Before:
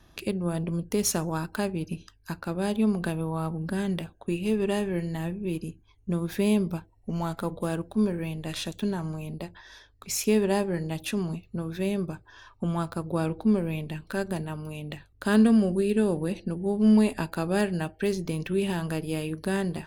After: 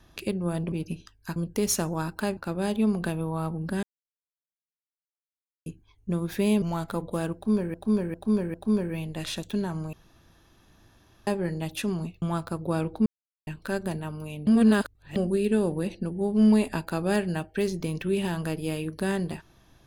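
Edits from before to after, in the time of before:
1.73–2.37 move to 0.72
3.83–5.66 mute
6.62–7.11 cut
7.83–8.23 loop, 4 plays
9.22–10.56 room tone
11.51–12.67 cut
13.51–13.92 mute
14.92–15.61 reverse

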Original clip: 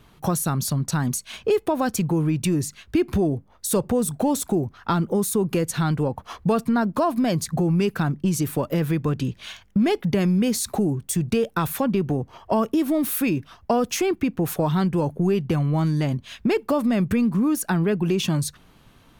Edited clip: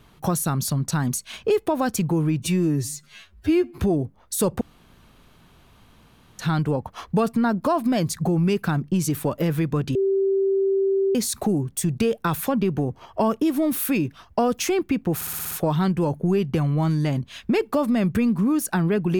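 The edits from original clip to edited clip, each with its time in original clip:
2.42–3.1 stretch 2×
3.93–5.71 room tone
9.27–10.47 bleep 389 Hz -17.5 dBFS
14.47 stutter 0.06 s, 7 plays

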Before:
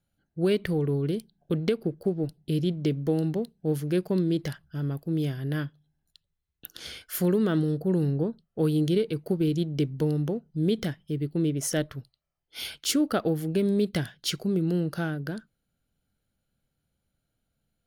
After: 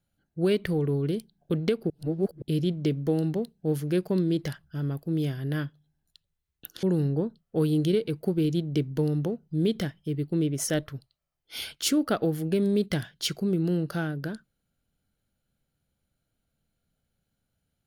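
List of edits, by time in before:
1.9–2.42 reverse
6.83–7.86 cut

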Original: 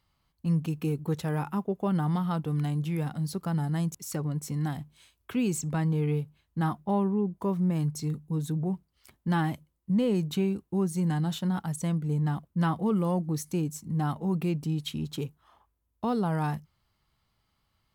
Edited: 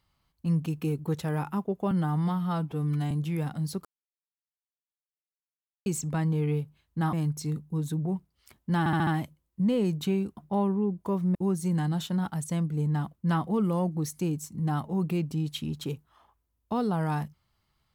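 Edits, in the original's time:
1.91–2.71 stretch 1.5×
3.45–5.46 mute
6.73–7.71 move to 10.67
9.37 stutter 0.07 s, 5 plays

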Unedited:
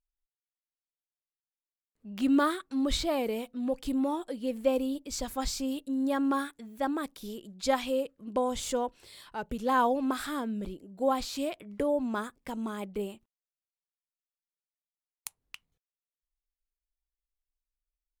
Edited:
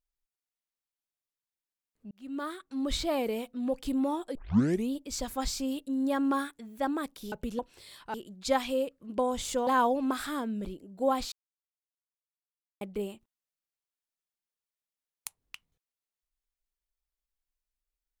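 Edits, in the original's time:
2.11–3.15 fade in
4.35 tape start 0.55 s
7.32–8.85 swap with 9.4–9.67
11.32–12.81 mute

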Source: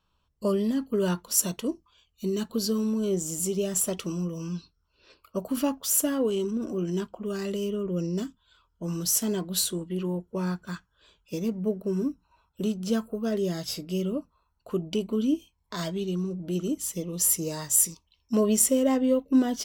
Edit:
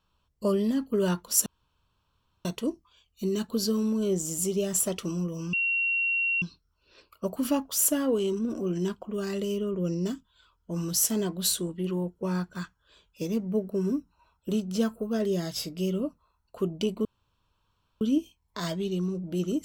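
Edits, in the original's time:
1.46 insert room tone 0.99 s
4.54 add tone 2740 Hz -23.5 dBFS 0.89 s
15.17 insert room tone 0.96 s

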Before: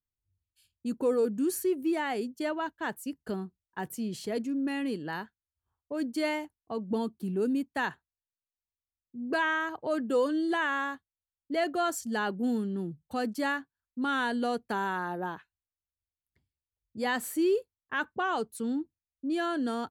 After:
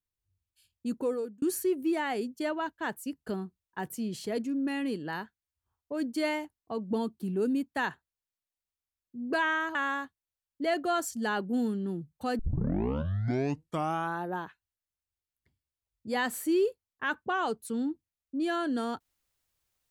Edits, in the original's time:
0.92–1.42 fade out
9.75–10.65 cut
13.29 tape start 1.84 s

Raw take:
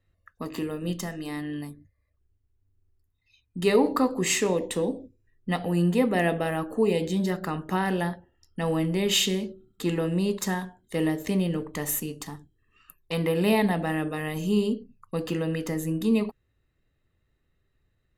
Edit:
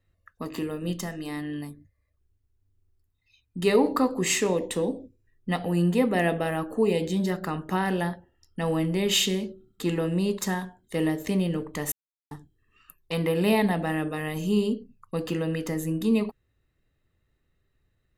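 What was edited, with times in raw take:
11.92–12.31 mute

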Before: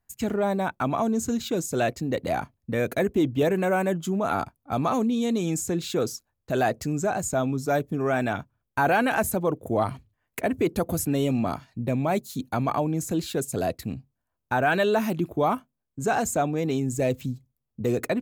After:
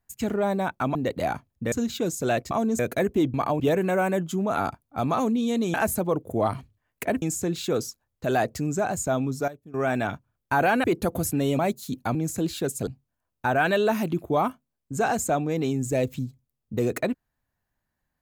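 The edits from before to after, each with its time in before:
0.95–1.23 swap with 2.02–2.79
7.44–8.3 dip -17.5 dB, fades 0.30 s logarithmic
9.1–10.58 move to 5.48
11.33–12.06 cut
12.62–12.88 move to 3.34
13.6–13.94 cut

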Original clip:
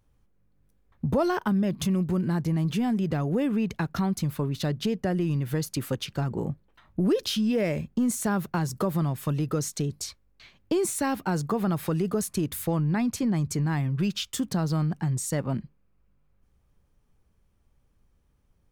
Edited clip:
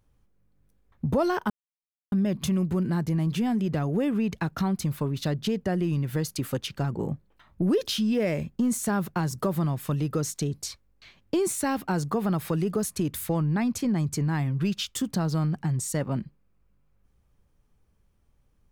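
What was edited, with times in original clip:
1.5 insert silence 0.62 s

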